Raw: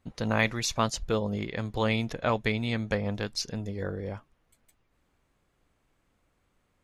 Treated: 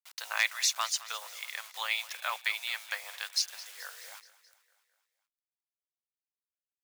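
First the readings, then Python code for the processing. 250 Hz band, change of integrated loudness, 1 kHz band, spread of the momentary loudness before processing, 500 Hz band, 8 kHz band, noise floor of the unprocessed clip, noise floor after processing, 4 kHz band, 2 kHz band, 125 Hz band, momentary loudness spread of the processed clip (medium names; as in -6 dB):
under -40 dB, -2.5 dB, -5.5 dB, 8 LU, -21.0 dB, +4.5 dB, -73 dBFS, under -85 dBFS, +3.0 dB, 0.0 dB, under -40 dB, 16 LU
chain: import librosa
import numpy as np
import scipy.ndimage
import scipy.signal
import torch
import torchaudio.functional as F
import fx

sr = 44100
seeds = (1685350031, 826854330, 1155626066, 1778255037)

y = 10.0 ** (-12.5 / 20.0) * (np.abs((x / 10.0 ** (-12.5 / 20.0) + 3.0) % 4.0 - 2.0) - 1.0)
y = fx.quant_dither(y, sr, seeds[0], bits=8, dither='none')
y = scipy.signal.sosfilt(scipy.signal.bessel(6, 1300.0, 'highpass', norm='mag', fs=sr, output='sos'), y)
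y = fx.tilt_eq(y, sr, slope=1.5)
y = fx.echo_feedback(y, sr, ms=214, feedback_pct=59, wet_db=-18)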